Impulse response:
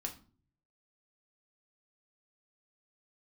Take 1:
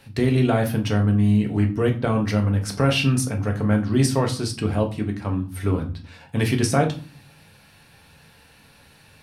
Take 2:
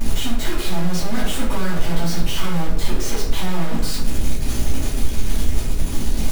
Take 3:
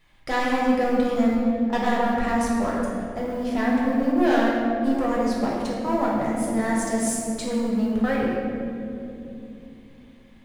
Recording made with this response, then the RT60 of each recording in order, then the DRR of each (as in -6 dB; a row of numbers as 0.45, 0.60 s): 1; 0.40, 0.60, 2.9 s; 2.0, -8.5, -5.0 dB